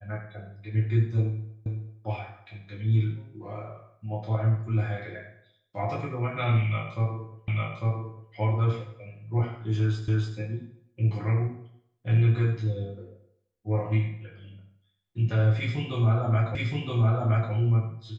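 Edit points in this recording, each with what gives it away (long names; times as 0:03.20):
0:01.66: the same again, the last 0.38 s
0:07.48: the same again, the last 0.85 s
0:10.08: the same again, the last 0.29 s
0:16.55: the same again, the last 0.97 s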